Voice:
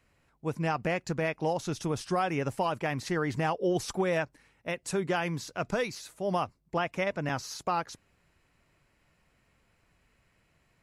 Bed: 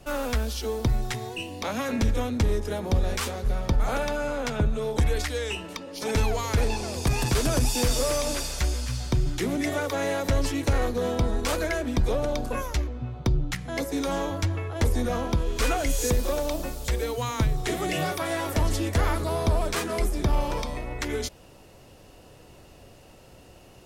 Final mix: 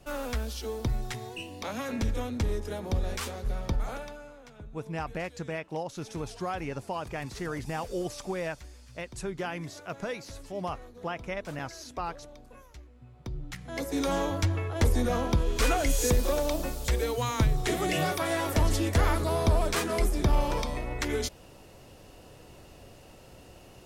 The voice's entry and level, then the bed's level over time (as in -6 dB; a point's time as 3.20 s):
4.30 s, -5.0 dB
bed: 3.75 s -5.5 dB
4.41 s -22 dB
12.87 s -22 dB
14.02 s -0.5 dB